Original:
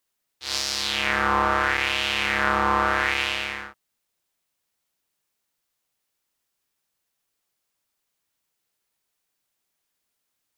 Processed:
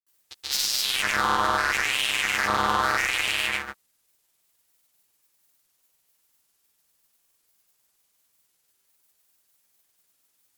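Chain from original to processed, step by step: gate -29 dBFS, range -8 dB; high shelf 7200 Hz +11.5 dB; compressor 3:1, threshold -30 dBFS, peak gain reduction 11 dB; sine folder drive 10 dB, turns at -13 dBFS; grains, pitch spread up and down by 0 st

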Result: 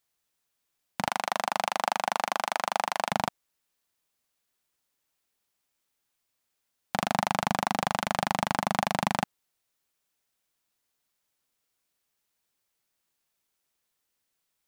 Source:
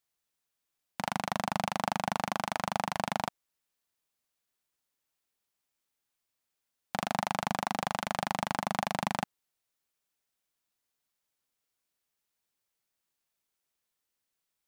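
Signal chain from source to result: 1.08–3.12 HPF 420 Hz 12 dB/oct; gain +4.5 dB

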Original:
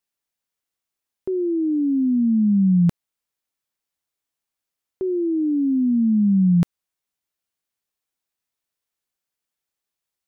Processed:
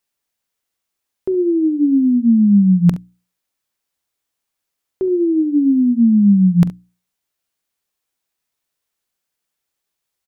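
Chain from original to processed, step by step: notches 60/120/180/240/300 Hz; tapped delay 44/69 ms -18.5/-16 dB; gain +6 dB

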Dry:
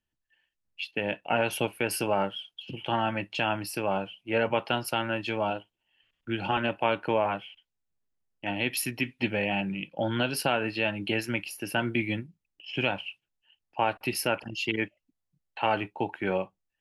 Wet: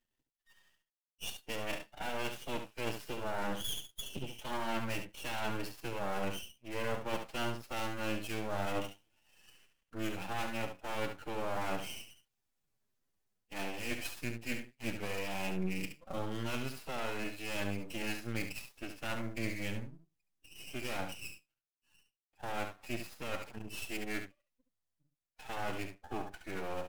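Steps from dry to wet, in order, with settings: switching dead time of 0.06 ms; Doppler pass-by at 3.9, 14 m/s, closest 19 m; reverse; compressor 10:1, threshold -46 dBFS, peak gain reduction 24.5 dB; reverse; time stretch by phase-locked vocoder 1.6×; half-wave rectifier; on a send: echo 70 ms -8 dB; on the sum: gain +15.5 dB

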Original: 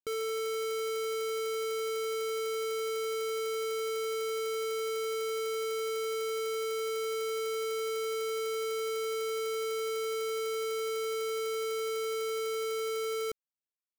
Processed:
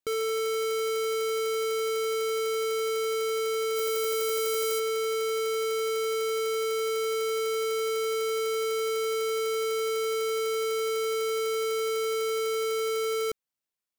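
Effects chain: 3.75–4.78 high shelf 12000 Hz -> 6400 Hz +10.5 dB; gain +5 dB

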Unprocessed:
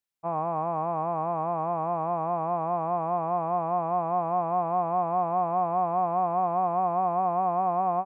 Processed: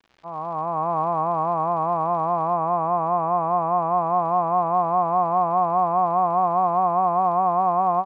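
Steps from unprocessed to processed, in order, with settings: opening faded in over 0.94 s; bell 1100 Hz +6 dB 0.67 oct; crackle 180/s -41 dBFS, from 2.53 s 18/s, from 3.98 s 110/s; air absorption 210 m; gain +4 dB

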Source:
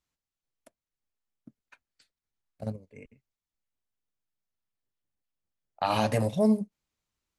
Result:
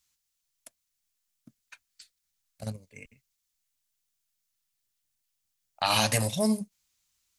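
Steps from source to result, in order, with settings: EQ curve 120 Hz 0 dB, 400 Hz -6 dB, 6500 Hz +15 dB

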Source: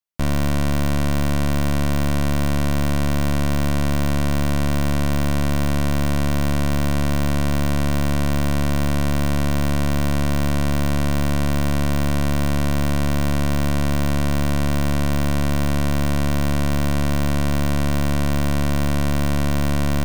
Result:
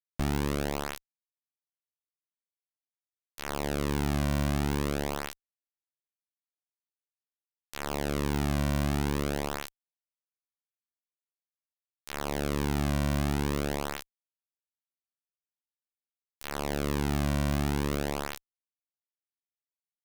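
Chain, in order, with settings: flange 0.23 Hz, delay 6.8 ms, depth 2.9 ms, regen +4%; limiter -25 dBFS, peak gain reduction 7 dB; Schmitt trigger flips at -39 dBFS; gain +2 dB

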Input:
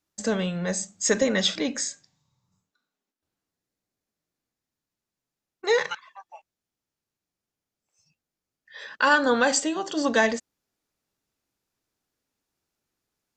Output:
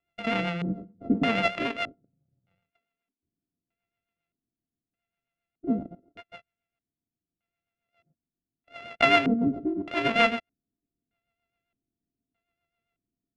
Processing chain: sample sorter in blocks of 64 samples; rotary speaker horn 7.5 Hz; LFO low-pass square 0.81 Hz 290–2600 Hz

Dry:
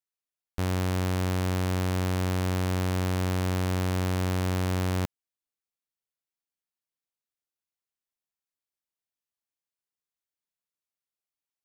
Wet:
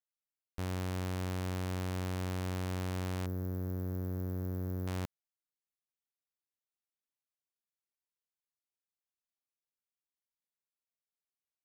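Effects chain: 3.26–4.87 EQ curve 430 Hz 0 dB, 900 Hz -13 dB, 1600 Hz -11 dB, 2800 Hz -27 dB, 5900 Hz -15 dB, 8900 Hz -20 dB, 13000 Hz +3 dB; gain -9 dB

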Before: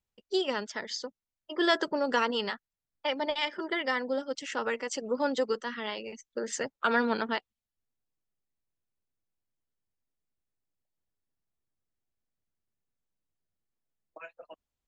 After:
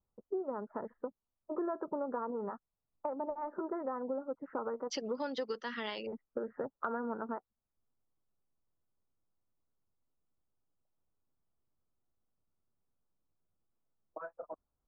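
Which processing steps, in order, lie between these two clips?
steep low-pass 1300 Hz 48 dB/oct, from 4.9 s 5700 Hz, from 6.05 s 1400 Hz; compressor 5:1, threshold -39 dBFS, peak gain reduction 15 dB; gain +4 dB

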